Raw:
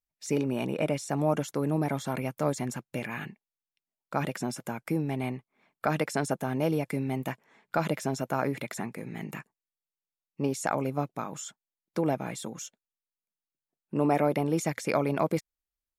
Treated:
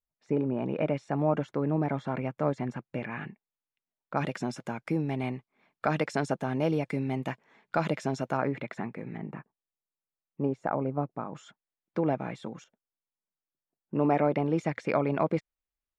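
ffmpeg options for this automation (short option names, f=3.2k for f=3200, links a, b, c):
-af "asetnsamples=n=441:p=0,asendcmd='0.66 lowpass f 2200;4.17 lowpass f 5200;8.37 lowpass f 2400;9.17 lowpass f 1200;11.35 lowpass f 2600;12.64 lowpass f 1300;13.95 lowpass f 2800',lowpass=1.3k"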